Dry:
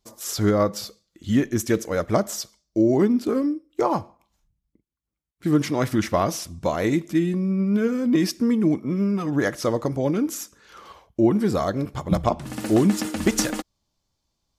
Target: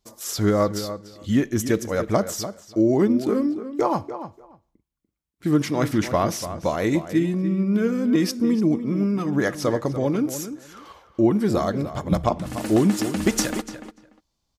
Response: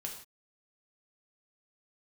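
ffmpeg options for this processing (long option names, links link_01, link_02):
-filter_complex "[0:a]asettb=1/sr,asplit=3[link_01][link_02][link_03];[link_01]atrim=end=8.394[link_04];[link_02]atrim=start=8.39:end=8.86,asetpts=PTS-STARTPTS,afade=type=in:duration=0.004:curve=qsin,afade=type=out:start_time=0.466:duration=0.004:curve=qsin,equalizer=frequency=1800:width=1.6:gain=-7[link_05];[link_03]atrim=start=8.856[link_06];[link_04][link_05]acrossfade=duration=0.004:curve1=hsin:curve2=qsin[link_07];[link_07][link_06]acrossfade=duration=0.004:curve1=qsin:curve2=hsin,asplit=2[link_08][link_09];[link_09]adelay=293,lowpass=frequency=3000:poles=1,volume=-11dB,asplit=2[link_10][link_11];[link_11]adelay=293,lowpass=frequency=3000:poles=1,volume=0.16[link_12];[link_10][link_12]amix=inputs=2:normalize=0[link_13];[link_08][link_13]amix=inputs=2:normalize=0"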